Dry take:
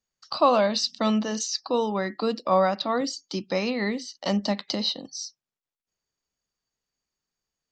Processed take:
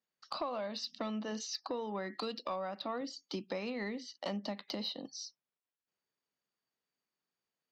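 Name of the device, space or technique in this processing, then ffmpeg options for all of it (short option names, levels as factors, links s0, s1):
AM radio: -filter_complex "[0:a]asettb=1/sr,asplit=3[s0][s1][s2];[s0]atrim=end=2.134[s3];[s1]atrim=start=2.13:end=2.56,asetpts=PTS-STARTPTS,afade=t=in:d=0.004:c=qsin,afade=t=out:st=0.426:d=0.004:c=qsin,equalizer=f=4100:w=0.62:g=11.5[s4];[s2]atrim=start=2.556[s5];[s3][s4]acrossfade=d=0.004:c1=hsin:c2=qsin[s6];[s6][s5]acrossfade=d=0.004:c1=qsin:c2=hsin,highpass=170,lowpass=3900,acompressor=threshold=0.0251:ratio=8,asoftclip=type=tanh:threshold=0.075,volume=0.75"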